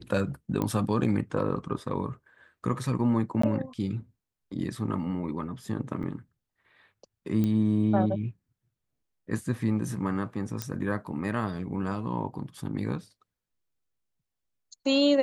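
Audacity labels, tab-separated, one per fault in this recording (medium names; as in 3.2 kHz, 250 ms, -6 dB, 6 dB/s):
0.620000	0.620000	pop -16 dBFS
3.420000	3.430000	dropout 14 ms
6.030000	6.030000	dropout 3.7 ms
7.440000	7.440000	pop -17 dBFS
10.620000	10.620000	pop -15 dBFS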